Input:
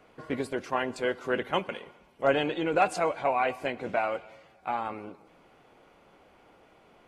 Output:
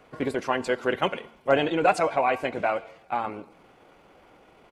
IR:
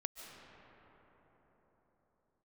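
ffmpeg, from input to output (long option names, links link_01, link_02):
-af "atempo=1.5,bandreject=frequency=226.4:width_type=h:width=4,bandreject=frequency=452.8:width_type=h:width=4,bandreject=frequency=679.2:width_type=h:width=4,bandreject=frequency=905.6:width_type=h:width=4,bandreject=frequency=1132:width_type=h:width=4,bandreject=frequency=1358.4:width_type=h:width=4,bandreject=frequency=1584.8:width_type=h:width=4,bandreject=frequency=1811.2:width_type=h:width=4,bandreject=frequency=2037.6:width_type=h:width=4,bandreject=frequency=2264:width_type=h:width=4,bandreject=frequency=2490.4:width_type=h:width=4,bandreject=frequency=2716.8:width_type=h:width=4,bandreject=frequency=2943.2:width_type=h:width=4,bandreject=frequency=3169.6:width_type=h:width=4,bandreject=frequency=3396:width_type=h:width=4,bandreject=frequency=3622.4:width_type=h:width=4,bandreject=frequency=3848.8:width_type=h:width=4,bandreject=frequency=4075.2:width_type=h:width=4,bandreject=frequency=4301.6:width_type=h:width=4,bandreject=frequency=4528:width_type=h:width=4,bandreject=frequency=4754.4:width_type=h:width=4,bandreject=frequency=4980.8:width_type=h:width=4,bandreject=frequency=5207.2:width_type=h:width=4,bandreject=frequency=5433.6:width_type=h:width=4,bandreject=frequency=5660:width_type=h:width=4,bandreject=frequency=5886.4:width_type=h:width=4,bandreject=frequency=6112.8:width_type=h:width=4,bandreject=frequency=6339.2:width_type=h:width=4,bandreject=frequency=6565.6:width_type=h:width=4,bandreject=frequency=6792:width_type=h:width=4,bandreject=frequency=7018.4:width_type=h:width=4,bandreject=frequency=7244.8:width_type=h:width=4,volume=4dB"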